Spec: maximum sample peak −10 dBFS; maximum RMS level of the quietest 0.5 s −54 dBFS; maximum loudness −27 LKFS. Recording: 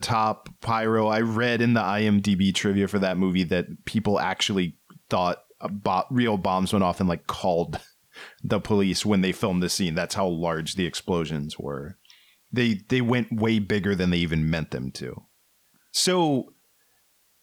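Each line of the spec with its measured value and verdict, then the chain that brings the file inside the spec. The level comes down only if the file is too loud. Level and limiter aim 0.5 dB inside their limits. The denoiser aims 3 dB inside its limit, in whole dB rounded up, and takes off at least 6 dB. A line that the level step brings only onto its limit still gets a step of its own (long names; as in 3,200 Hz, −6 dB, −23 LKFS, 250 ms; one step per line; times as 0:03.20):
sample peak −12.0 dBFS: in spec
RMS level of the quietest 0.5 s −65 dBFS: in spec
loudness −24.5 LKFS: out of spec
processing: level −3 dB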